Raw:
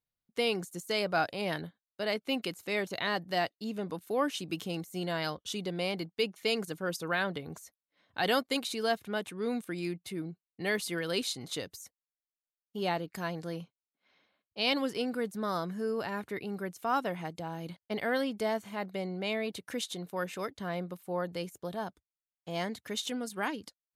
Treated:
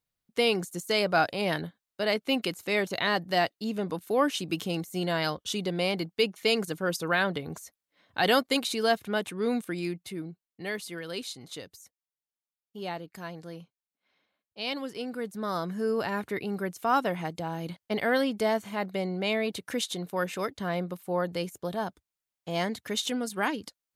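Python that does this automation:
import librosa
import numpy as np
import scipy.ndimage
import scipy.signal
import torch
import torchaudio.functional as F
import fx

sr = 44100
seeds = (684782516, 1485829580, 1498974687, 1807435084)

y = fx.gain(x, sr, db=fx.line((9.55, 5.0), (10.87, -4.0), (14.87, -4.0), (15.91, 5.0)))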